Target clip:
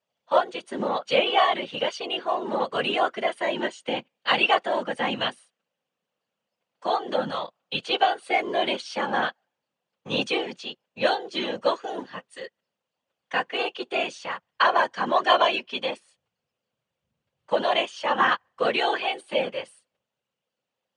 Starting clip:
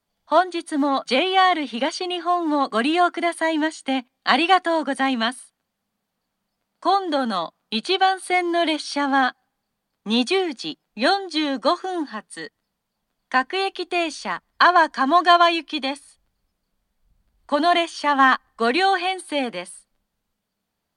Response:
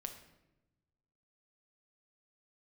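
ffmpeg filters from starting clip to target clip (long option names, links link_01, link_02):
-af "afftfilt=real='hypot(re,im)*cos(2*PI*random(0))':imag='hypot(re,im)*sin(2*PI*random(1))':win_size=512:overlap=0.75,highpass=180,equalizer=frequency=290:width_type=q:width=4:gain=-8,equalizer=frequency=520:width_type=q:width=4:gain=9,equalizer=frequency=2800:width_type=q:width=4:gain=8,equalizer=frequency=4500:width_type=q:width=4:gain=-4,lowpass=frequency=7600:width=0.5412,lowpass=frequency=7600:width=1.3066"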